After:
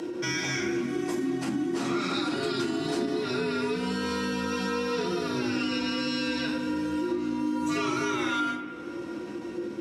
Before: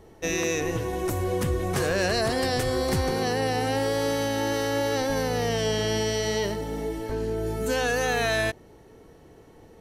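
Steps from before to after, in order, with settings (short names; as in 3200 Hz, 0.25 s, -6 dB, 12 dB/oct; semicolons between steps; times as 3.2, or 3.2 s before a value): LPF 7200 Hz 12 dB/oct; shoebox room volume 280 m³, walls furnished, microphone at 7.2 m; upward compressor, threshold -15 dBFS; frequency shift -360 Hz; HPF 330 Hz 12 dB/oct; compressor 5:1, threshold -22 dBFS, peak gain reduction 12 dB; on a send: analogue delay 0.203 s, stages 4096, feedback 65%, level -15 dB; on the sum: ending taper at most 110 dB/s; gain -4.5 dB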